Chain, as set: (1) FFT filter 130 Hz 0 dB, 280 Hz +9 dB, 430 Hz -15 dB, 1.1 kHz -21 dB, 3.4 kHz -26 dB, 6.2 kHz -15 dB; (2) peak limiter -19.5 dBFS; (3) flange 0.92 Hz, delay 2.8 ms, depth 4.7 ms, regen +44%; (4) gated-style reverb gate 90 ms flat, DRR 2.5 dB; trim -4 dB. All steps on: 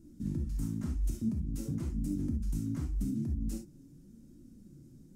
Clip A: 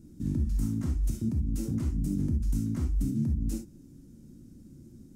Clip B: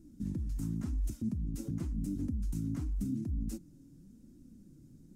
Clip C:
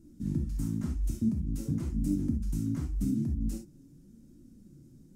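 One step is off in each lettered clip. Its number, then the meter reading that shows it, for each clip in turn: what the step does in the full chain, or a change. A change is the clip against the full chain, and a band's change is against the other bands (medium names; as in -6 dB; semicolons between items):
3, 125 Hz band +2.0 dB; 4, momentary loudness spread change -9 LU; 2, mean gain reduction 1.5 dB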